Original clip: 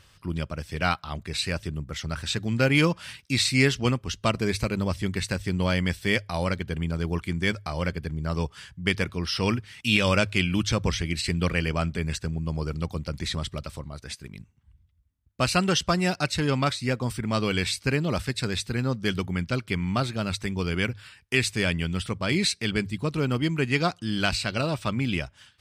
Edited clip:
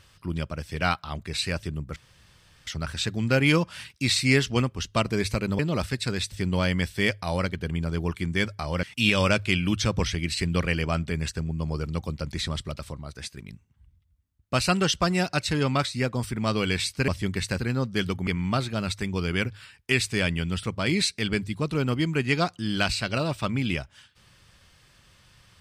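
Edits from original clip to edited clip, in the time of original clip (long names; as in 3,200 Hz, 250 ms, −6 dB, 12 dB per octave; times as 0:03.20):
0:01.96: splice in room tone 0.71 s
0:04.88–0:05.39: swap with 0:17.95–0:18.68
0:07.90–0:09.70: remove
0:19.36–0:19.70: remove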